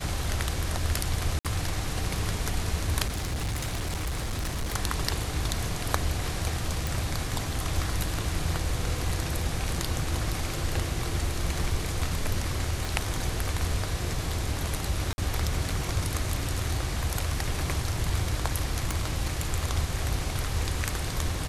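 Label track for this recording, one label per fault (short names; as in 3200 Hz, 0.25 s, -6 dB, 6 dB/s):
1.390000	1.450000	gap 57 ms
3.060000	4.760000	clipped -26.5 dBFS
6.870000	6.870000	pop
12.850000	12.850000	pop
15.130000	15.180000	gap 51 ms
18.910000	18.910000	pop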